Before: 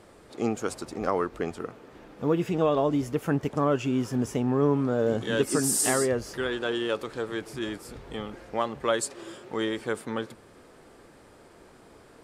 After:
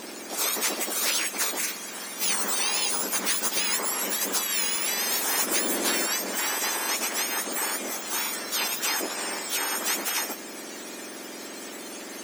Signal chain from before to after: spectrum mirrored in octaves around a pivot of 1700 Hz; spectral compressor 4:1

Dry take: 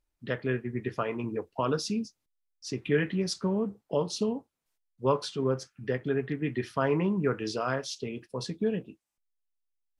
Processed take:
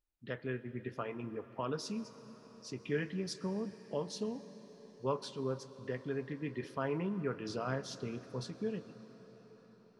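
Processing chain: 7.49–8.44 low shelf 300 Hz +8 dB; reverb RT60 6.6 s, pre-delay 98 ms, DRR 13.5 dB; gain -9 dB

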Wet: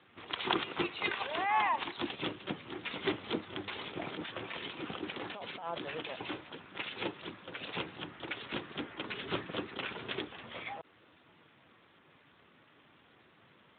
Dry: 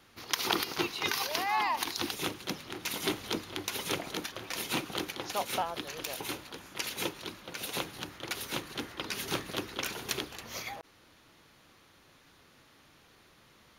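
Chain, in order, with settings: 3.71–6.02 negative-ratio compressor -39 dBFS, ratio -1; Speex 11 kbps 8000 Hz

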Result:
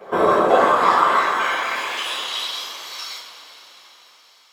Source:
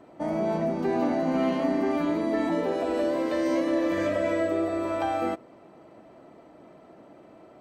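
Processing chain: high-pass sweep 300 Hz -> 2900 Hz, 0.46–4.38; whisperiser; wide varispeed 1.68×; two-slope reverb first 0.35 s, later 4.8 s, from -18 dB, DRR -6 dB; gain +1 dB

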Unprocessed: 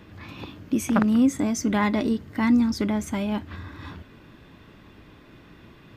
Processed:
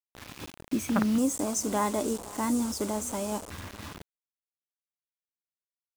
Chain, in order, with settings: echo 0.511 s -20 dB; bit-crush 6-bit; 1.18–3.5 graphic EQ 125/250/500/1000/2000/4000/8000 Hz -9/-3/+6/+4/-8/-4/+12 dB; gain -5 dB

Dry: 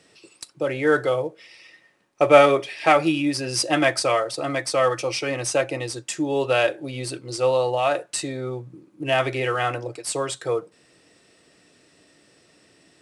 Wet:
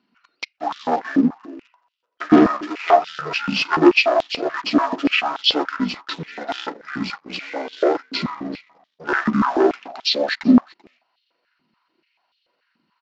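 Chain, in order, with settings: delay-line pitch shifter -11 st; sample leveller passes 3; downsampling 16000 Hz; on a send: echo 0.386 s -21 dB; on the sum: stepped high-pass 6.9 Hz 230–3400 Hz; gain -7.5 dB

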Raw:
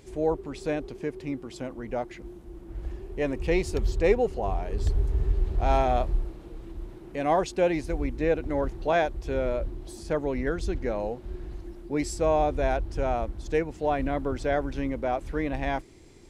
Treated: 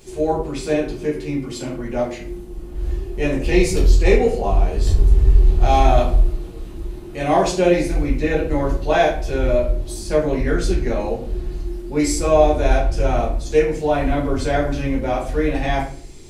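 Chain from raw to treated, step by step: high shelf 3100 Hz +10 dB; shoebox room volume 48 m³, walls mixed, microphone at 1.4 m; gain -1.5 dB

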